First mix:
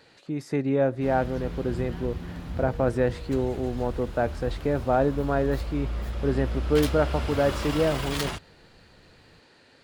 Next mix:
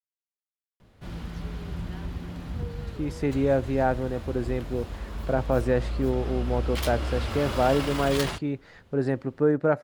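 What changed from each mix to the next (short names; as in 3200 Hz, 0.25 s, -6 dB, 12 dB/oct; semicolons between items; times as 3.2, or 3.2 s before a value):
speech: entry +2.70 s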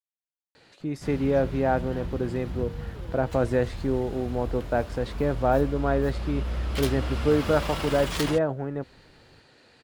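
speech: entry -2.15 s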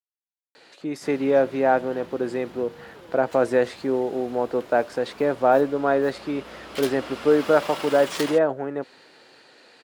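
speech +5.5 dB; master: add HPF 310 Hz 12 dB/oct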